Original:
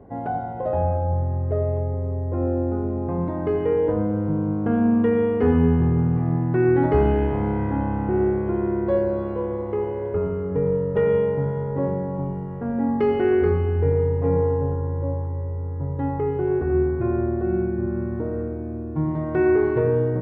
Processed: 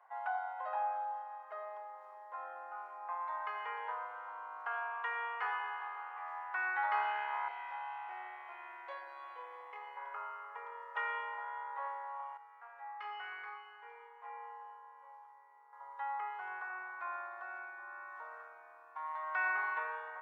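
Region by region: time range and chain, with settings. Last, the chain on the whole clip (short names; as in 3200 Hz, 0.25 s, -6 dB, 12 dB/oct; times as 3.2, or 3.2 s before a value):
7.48–9.97 band shelf 1200 Hz -12 dB 1.1 oct + doubler 28 ms -3.5 dB
12.37–15.73 resonator 59 Hz, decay 0.41 s, mix 90% + flutter echo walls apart 6.9 m, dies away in 0.2 s
whole clip: steep high-pass 940 Hz 36 dB/oct; high shelf 2600 Hz -8.5 dB; gain +2.5 dB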